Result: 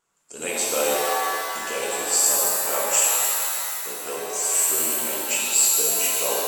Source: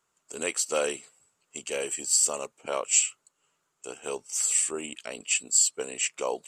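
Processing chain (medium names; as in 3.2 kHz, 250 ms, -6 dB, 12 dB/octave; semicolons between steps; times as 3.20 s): vibrato 8.8 Hz 43 cents; pitch-shifted reverb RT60 2.4 s, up +7 st, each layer -2 dB, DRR -4 dB; trim -1 dB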